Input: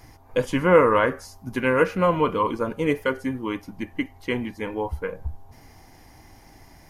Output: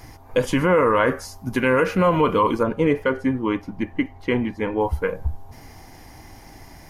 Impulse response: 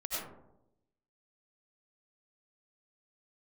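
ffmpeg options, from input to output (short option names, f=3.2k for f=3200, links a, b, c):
-filter_complex "[0:a]asettb=1/sr,asplit=3[a][b][c];[a]atrim=end=2.634[d];[b]atrim=start=2.63:end=4.81,asetpts=PTS-STARTPTS,afade=t=in:d=0.004:c=qsin,afade=t=out:st=2.176:d=0.004:c=qsin,lowpass=f=2.1k:p=1[e];[c]atrim=start=4.806[f];[d][e]acrossfade=d=0.004:c1=hsin:c2=qsin[g];[g][f]acrossfade=d=0.004:c1=qsin:c2=hsin,alimiter=level_in=14dB:limit=-1dB:release=50:level=0:latency=1,volume=-8dB"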